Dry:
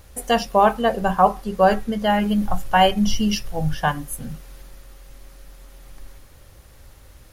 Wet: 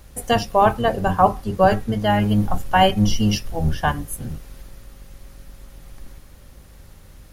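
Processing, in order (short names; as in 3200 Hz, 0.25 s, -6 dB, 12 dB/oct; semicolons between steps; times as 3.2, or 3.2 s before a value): octaver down 1 oct, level -1 dB; hum 50 Hz, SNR 30 dB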